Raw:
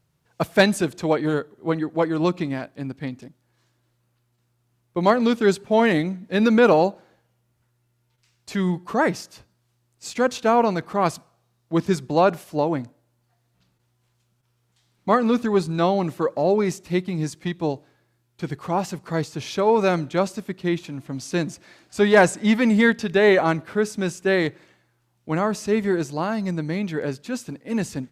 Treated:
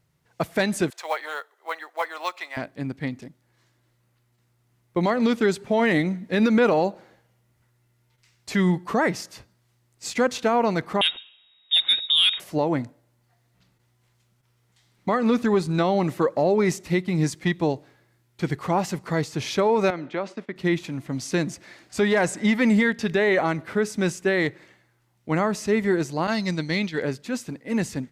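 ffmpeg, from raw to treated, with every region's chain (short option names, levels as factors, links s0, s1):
-filter_complex "[0:a]asettb=1/sr,asplit=3[s0][s1][s2];[s0]atrim=end=0.904[s3];[s1]atrim=start=0.9:end=2.57,asetpts=PTS-STARTPTS,afade=t=in:d=0.004:c=qsin,afade=t=out:st=1.666:d=0.004:c=qsin,highpass=f=710:w=0.5412,highpass=f=710:w=1.3066,acrusher=bits=6:mode=log:mix=0:aa=0.000001[s4];[s2]atrim=start=2.566[s5];[s3][s4]acrossfade=d=0.004:c1=hsin:c2=qsin[s6];[s6][s5]acrossfade=d=0.004:c1=qsin:c2=hsin,asettb=1/sr,asplit=3[s7][s8][s9];[s7]atrim=end=11.014[s10];[s8]atrim=start=11.01:end=12.4,asetpts=PTS-STARTPTS,afade=t=in:d=0.004:c=qsin,afade=t=out:st=1.386:d=0.004:c=qsin,highpass=41,lowpass=f=3300:t=q:w=0.5098,lowpass=f=3300:t=q:w=0.6013,lowpass=f=3300:t=q:w=0.9,lowpass=f=3300:t=q:w=2.563,afreqshift=-3900,acontrast=70[s11];[s9]atrim=start=12.396[s12];[s10][s11]acrossfade=d=0.004:c1=hsin:c2=qsin[s13];[s13][s12]acrossfade=d=0.004:c1=qsin:c2=hsin,asettb=1/sr,asplit=3[s14][s15][s16];[s14]atrim=end=19.904[s17];[s15]atrim=start=19.9:end=20.56,asetpts=PTS-STARTPTS,afade=t=in:d=0.004:c=qsin,afade=t=out:st=0.656:d=0.004:c=qsin,agate=range=0.2:threshold=0.00794:ratio=16:release=100:detection=peak,acompressor=threshold=0.0562:ratio=4:attack=3.2:release=140:knee=1:detection=peak,highpass=260,lowpass=3200[s18];[s16]atrim=start=20.556[s19];[s17][s18]acrossfade=d=0.004:c1=hsin:c2=qsin[s20];[s20][s19]acrossfade=d=0.004:c1=qsin:c2=hsin,asettb=1/sr,asplit=3[s21][s22][s23];[s21]atrim=end=26.274[s24];[s22]atrim=start=26.27:end=27.02,asetpts=PTS-STARTPTS,afade=t=in:d=0.004:c=qsin,afade=t=out:st=0.746:d=0.004:c=qsin,agate=range=0.0224:threshold=0.0562:ratio=3:release=100:detection=peak,equalizer=f=4200:w=0.82:g=13[s25];[s23]atrim=start=27.016[s26];[s24][s25]acrossfade=d=0.004:c1=hsin:c2=qsin[s27];[s27][s26]acrossfade=d=0.004:c1=qsin:c2=hsin,equalizer=f=2000:t=o:w=0.23:g=6,dynaudnorm=f=460:g=17:m=3.76,alimiter=limit=0.266:level=0:latency=1:release=187"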